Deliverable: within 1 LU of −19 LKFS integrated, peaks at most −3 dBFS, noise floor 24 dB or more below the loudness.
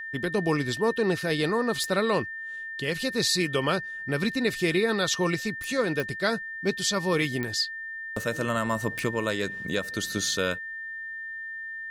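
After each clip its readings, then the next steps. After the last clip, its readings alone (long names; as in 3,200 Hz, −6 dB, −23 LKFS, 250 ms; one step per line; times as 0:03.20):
number of clicks 5; interfering tone 1,800 Hz; level of the tone −34 dBFS; integrated loudness −27.5 LKFS; sample peak −12.5 dBFS; target loudness −19.0 LKFS
→ click removal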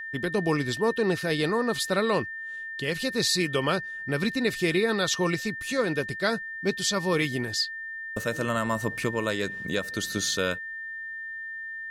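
number of clicks 0; interfering tone 1,800 Hz; level of the tone −34 dBFS
→ notch filter 1,800 Hz, Q 30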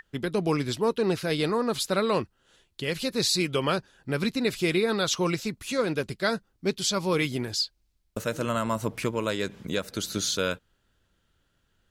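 interfering tone none found; integrated loudness −27.5 LKFS; sample peak −13.0 dBFS; target loudness −19.0 LKFS
→ level +8.5 dB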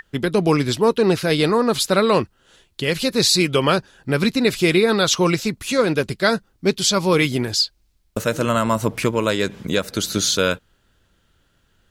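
integrated loudness −19.0 LKFS; sample peak −4.5 dBFS; background noise floor −63 dBFS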